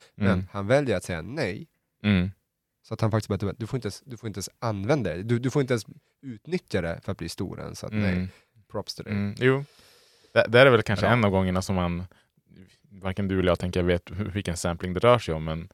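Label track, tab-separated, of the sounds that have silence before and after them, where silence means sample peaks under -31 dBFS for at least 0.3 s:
2.040000	2.290000	sound
2.910000	5.810000	sound
6.270000	8.270000	sound
8.750000	9.620000	sound
10.350000	12.040000	sound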